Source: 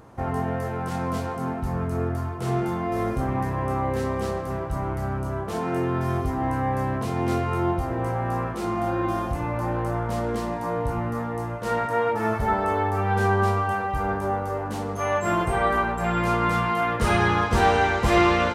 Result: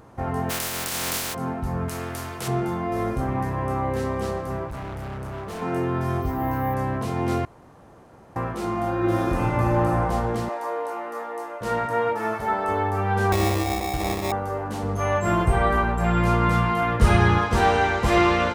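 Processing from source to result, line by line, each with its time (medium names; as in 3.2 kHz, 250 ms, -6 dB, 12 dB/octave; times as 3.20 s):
0.49–1.33 s: spectral contrast reduction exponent 0.2
1.88–2.48 s: spectrum-flattening compressor 2:1
4.68–5.62 s: hard clipper -31 dBFS
6.22–6.74 s: careless resampling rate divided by 3×, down filtered, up hold
7.45–8.36 s: room tone
8.97–9.89 s: reverb throw, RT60 2.7 s, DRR -4.5 dB
10.49–11.61 s: high-pass 380 Hz 24 dB/octave
12.13–12.69 s: high-pass 340 Hz 6 dB/octave
13.32–14.32 s: sample-rate reducer 1.5 kHz
14.83–17.39 s: bass shelf 140 Hz +11 dB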